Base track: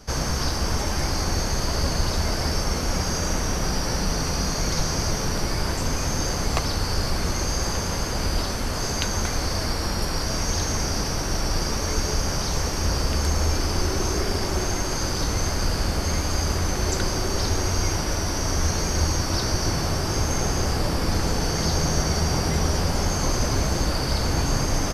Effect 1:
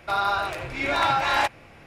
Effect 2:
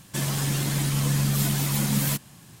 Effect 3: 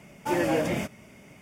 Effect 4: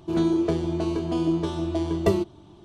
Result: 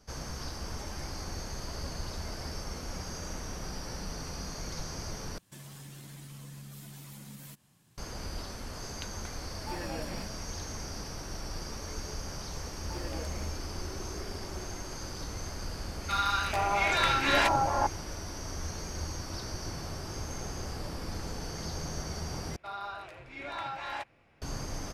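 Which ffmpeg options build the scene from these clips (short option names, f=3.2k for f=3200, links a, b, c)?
-filter_complex "[3:a]asplit=2[a][b];[1:a]asplit=2[c][d];[0:a]volume=-14.5dB[e];[2:a]acompressor=threshold=-25dB:ratio=4:attack=1.2:release=352:knee=1:detection=peak[f];[a]aecho=1:1:1.2:0.33[g];[c]acrossover=split=1100[h][i];[h]adelay=440[j];[j][i]amix=inputs=2:normalize=0[k];[d]highshelf=f=8.8k:g=-8[l];[e]asplit=3[m][n][o];[m]atrim=end=5.384[p];[f]atrim=end=2.6,asetpts=PTS-STARTPTS,volume=-17dB[q];[n]atrim=start=7.976:end=22.564[r];[l]atrim=end=1.86,asetpts=PTS-STARTPTS,volume=-15.5dB[s];[o]atrim=start=24.416[t];[g]atrim=end=1.41,asetpts=PTS-STARTPTS,volume=-13.5dB,afade=t=in:d=0.004:c=hsin,afade=t=out:st=1.406:d=0.004:c=hsin,adelay=9410[u];[b]atrim=end=1.41,asetpts=PTS-STARTPTS,volume=-17.5dB,afade=t=in:d=0.004:c=hsin,afade=t=out:st=1.406:d=0.004:c=hsin,adelay=12640[v];[k]atrim=end=1.86,asetpts=PTS-STARTPTS,volume=-0.5dB,afade=t=in:d=0.004:c=hsin,afade=t=out:st=1.856:d=0.004:c=hsin,adelay=16010[w];[p][q]acrossfade=d=0.004:c1=hsin:c2=hsin[x];[x][r]acrossfade=d=0.004:c1=hsin:c2=hsin[y];[y][s]acrossfade=d=0.004:c1=hsin:c2=hsin[z];[z][t]acrossfade=d=0.004:c1=hsin:c2=hsin[aa];[aa][u][v][w]amix=inputs=4:normalize=0"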